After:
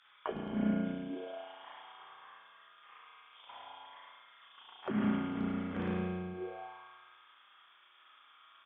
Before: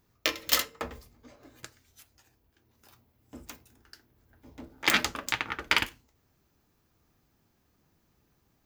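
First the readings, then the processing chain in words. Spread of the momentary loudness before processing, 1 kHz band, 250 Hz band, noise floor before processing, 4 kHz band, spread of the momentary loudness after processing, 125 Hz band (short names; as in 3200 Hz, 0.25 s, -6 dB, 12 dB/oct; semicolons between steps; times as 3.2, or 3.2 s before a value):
15 LU, -7.0 dB, +9.5 dB, -72 dBFS, -20.5 dB, 23 LU, +8.0 dB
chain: on a send: feedback echo 0.11 s, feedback 46%, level -5 dB; on the sum: inverted band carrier 3500 Hz; in parallel at 0 dB: upward compressor, threshold -38 dBFS; on the sum: transient shaper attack -8 dB, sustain +11 dB; spring tank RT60 1.7 s, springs 33 ms, chirp 70 ms, DRR -6 dB; auto-wah 210–1400 Hz, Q 4.7, down, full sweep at -18.5 dBFS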